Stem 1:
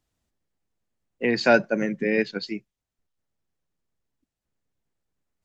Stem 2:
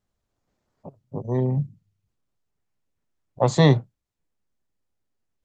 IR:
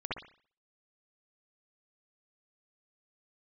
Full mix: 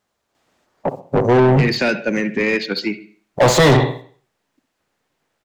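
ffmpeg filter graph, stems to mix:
-filter_complex "[0:a]acrossover=split=410|2300[link_01][link_02][link_03];[link_01]acompressor=threshold=-29dB:ratio=4[link_04];[link_02]acompressor=threshold=-47dB:ratio=4[link_05];[link_03]acompressor=threshold=-34dB:ratio=4[link_06];[link_04][link_05][link_06]amix=inputs=3:normalize=0,adelay=350,volume=-8dB,asplit=2[link_07][link_08];[link_08]volume=-13.5dB[link_09];[1:a]agate=range=-14dB:threshold=-49dB:ratio=16:detection=peak,highshelf=frequency=6100:gain=8.5,volume=0dB,asplit=2[link_10][link_11];[link_11]volume=-15dB[link_12];[2:a]atrim=start_sample=2205[link_13];[link_09][link_12]amix=inputs=2:normalize=0[link_14];[link_14][link_13]afir=irnorm=-1:irlink=0[link_15];[link_07][link_10][link_15]amix=inputs=3:normalize=0,asplit=2[link_16][link_17];[link_17]highpass=frequency=720:poles=1,volume=34dB,asoftclip=type=tanh:threshold=-4dB[link_18];[link_16][link_18]amix=inputs=2:normalize=0,lowpass=frequency=2200:poles=1,volume=-6dB"

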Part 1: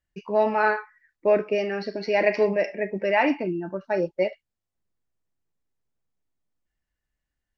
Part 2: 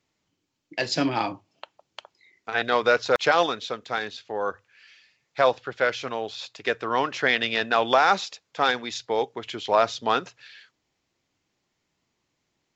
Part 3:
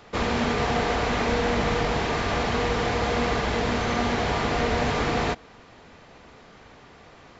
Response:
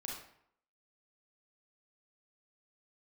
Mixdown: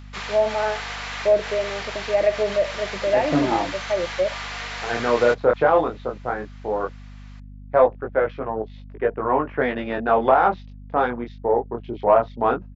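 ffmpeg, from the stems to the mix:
-filter_complex "[0:a]equalizer=frequency=610:width=1.8:gain=12.5,volume=-14.5dB,asplit=2[link_01][link_02];[1:a]afwtdn=0.0158,lowpass=1000,flanger=delay=18.5:depth=7:speed=0.16,adelay=2350,volume=2.5dB[link_03];[2:a]highpass=1400,volume=-6.5dB[link_04];[link_02]apad=whole_len=326225[link_05];[link_04][link_05]sidechaincompress=threshold=-26dB:ratio=8:attack=21:release=169[link_06];[link_01][link_03][link_06]amix=inputs=3:normalize=0,acontrast=53,aeval=exprs='val(0)+0.0112*(sin(2*PI*50*n/s)+sin(2*PI*2*50*n/s)/2+sin(2*PI*3*50*n/s)/3+sin(2*PI*4*50*n/s)/4+sin(2*PI*5*50*n/s)/5)':channel_layout=same"

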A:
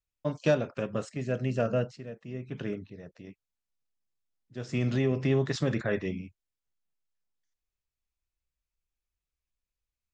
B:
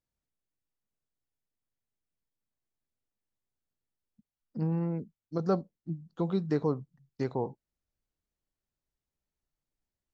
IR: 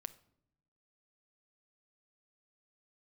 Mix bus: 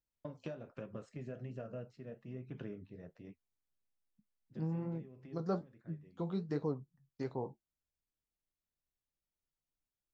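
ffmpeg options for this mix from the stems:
-filter_complex "[0:a]highshelf=frequency=2700:gain=-11,acompressor=threshold=-35dB:ratio=12,volume=-1.5dB,afade=type=out:start_time=5.68:duration=0.55:silence=0.266073[link_01];[1:a]volume=-3.5dB,asplit=2[link_02][link_03];[link_03]apad=whole_len=446864[link_04];[link_01][link_04]sidechaincompress=threshold=-44dB:ratio=8:attack=33:release=1060[link_05];[link_05][link_02]amix=inputs=2:normalize=0,flanger=delay=5.6:depth=8.2:regen=-62:speed=1.2:shape=triangular"

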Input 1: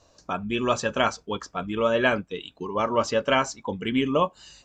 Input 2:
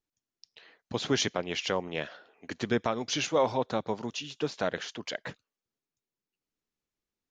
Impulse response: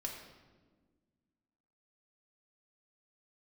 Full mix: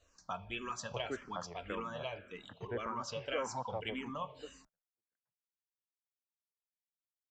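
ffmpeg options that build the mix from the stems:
-filter_complex "[0:a]acompressor=threshold=-26dB:ratio=6,volume=-7.5dB,asplit=3[link_01][link_02][link_03];[link_02]volume=-7dB[link_04];[1:a]lowpass=frequency=1500:width=0.5412,lowpass=frequency=1500:width=1.3066,volume=-4dB[link_05];[link_03]apad=whole_len=322181[link_06];[link_05][link_06]sidechaingate=range=-49dB:threshold=-54dB:ratio=16:detection=peak[link_07];[2:a]atrim=start_sample=2205[link_08];[link_04][link_08]afir=irnorm=-1:irlink=0[link_09];[link_01][link_07][link_09]amix=inputs=3:normalize=0,equalizer=frequency=300:width=0.83:gain=-10,asplit=2[link_10][link_11];[link_11]afreqshift=-1.8[link_12];[link_10][link_12]amix=inputs=2:normalize=1"

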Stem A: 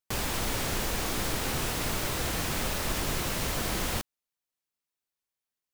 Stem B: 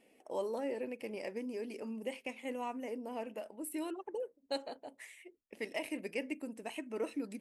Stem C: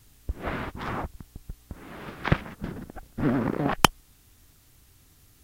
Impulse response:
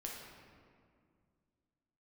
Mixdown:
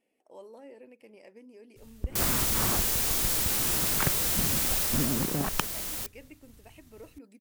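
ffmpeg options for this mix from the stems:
-filter_complex "[0:a]crystalizer=i=3:c=0,adelay=2050,volume=-5dB,afade=type=out:start_time=4.8:duration=0.59:silence=0.421697[link_01];[1:a]volume=-11dB[link_02];[2:a]bass=frequency=250:gain=5,treble=frequency=4000:gain=0,acompressor=threshold=-26dB:ratio=6,agate=range=-33dB:threshold=-50dB:ratio=3:detection=peak,adelay=1750,volume=-0.5dB[link_03];[link_01][link_02][link_03]amix=inputs=3:normalize=0"

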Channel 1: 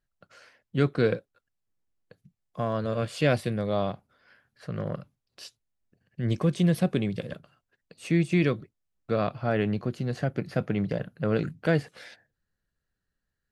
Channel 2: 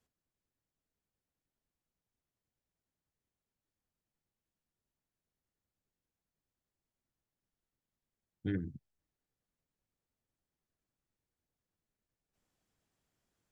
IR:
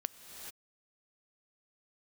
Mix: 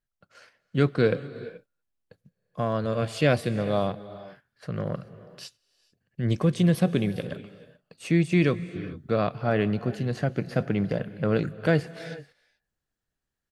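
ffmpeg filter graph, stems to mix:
-filter_complex "[0:a]volume=-1.5dB,asplit=2[link_01][link_02];[link_02]volume=-5.5dB[link_03];[1:a]alimiter=level_in=4dB:limit=-24dB:level=0:latency=1,volume=-4dB,adelay=300,volume=-1dB,asplit=2[link_04][link_05];[link_05]volume=-14dB[link_06];[2:a]atrim=start_sample=2205[link_07];[link_03][link_06]amix=inputs=2:normalize=0[link_08];[link_08][link_07]afir=irnorm=-1:irlink=0[link_09];[link_01][link_04][link_09]amix=inputs=3:normalize=0,agate=range=-7dB:threshold=-52dB:ratio=16:detection=peak"

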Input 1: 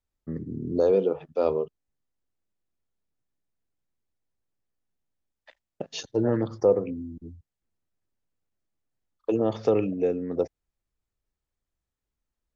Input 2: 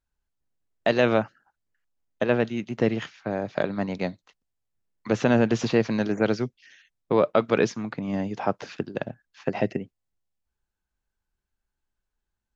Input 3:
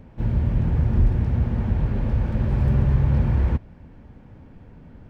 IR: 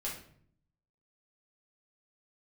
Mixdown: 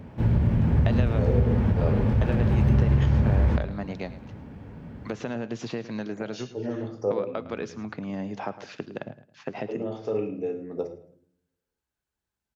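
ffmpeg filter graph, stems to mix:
-filter_complex "[0:a]adelay=400,volume=-6dB,asplit=3[link_01][link_02][link_03];[link_02]volume=-5dB[link_04];[link_03]volume=-18dB[link_05];[1:a]acompressor=threshold=-27dB:ratio=6,volume=-2.5dB,asplit=4[link_06][link_07][link_08][link_09];[link_07]volume=-18.5dB[link_10];[link_08]volume=-15dB[link_11];[2:a]acompressor=threshold=-20dB:ratio=6,volume=2.5dB,asplit=2[link_12][link_13];[link_13]volume=-8dB[link_14];[link_09]apad=whole_len=571339[link_15];[link_01][link_15]sidechaincompress=threshold=-45dB:ratio=3:attack=16:release=958[link_16];[3:a]atrim=start_sample=2205[link_17];[link_04][link_10][link_14]amix=inputs=3:normalize=0[link_18];[link_18][link_17]afir=irnorm=-1:irlink=0[link_19];[link_05][link_11]amix=inputs=2:normalize=0,aecho=0:1:108|216|324|432|540:1|0.32|0.102|0.0328|0.0105[link_20];[link_16][link_06][link_12][link_19][link_20]amix=inputs=5:normalize=0,highpass=68"

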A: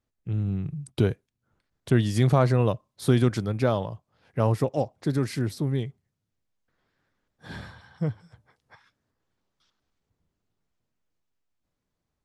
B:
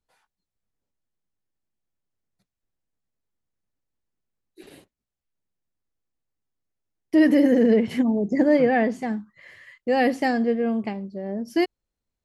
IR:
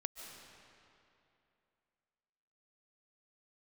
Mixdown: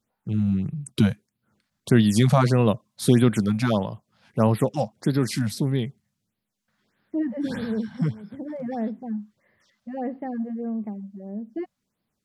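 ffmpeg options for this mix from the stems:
-filter_complex "[0:a]highpass=100,equalizer=frequency=8300:width_type=o:width=2.9:gain=5.5,volume=2.5dB,asplit=2[link_01][link_02];[1:a]lowpass=1100,volume=-9.5dB[link_03];[link_02]apad=whole_len=540027[link_04];[link_03][link_04]sidechaincompress=threshold=-39dB:ratio=8:attack=16:release=440[link_05];[link_01][link_05]amix=inputs=2:normalize=0,equalizer=frequency=210:width_type=o:width=0.29:gain=9.5,afftfilt=real='re*(1-between(b*sr/1024,330*pow(7600/330,0.5+0.5*sin(2*PI*1.6*pts/sr))/1.41,330*pow(7600/330,0.5+0.5*sin(2*PI*1.6*pts/sr))*1.41))':imag='im*(1-between(b*sr/1024,330*pow(7600/330,0.5+0.5*sin(2*PI*1.6*pts/sr))/1.41,330*pow(7600/330,0.5+0.5*sin(2*PI*1.6*pts/sr))*1.41))':win_size=1024:overlap=0.75"

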